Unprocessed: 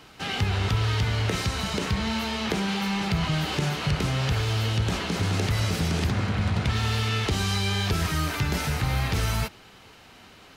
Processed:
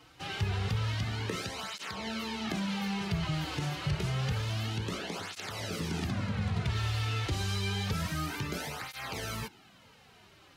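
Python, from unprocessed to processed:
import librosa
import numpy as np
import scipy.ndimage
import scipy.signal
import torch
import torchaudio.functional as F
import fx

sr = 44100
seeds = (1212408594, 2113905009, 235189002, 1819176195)

y = fx.flanger_cancel(x, sr, hz=0.28, depth_ms=5.1)
y = y * librosa.db_to_amplitude(-5.0)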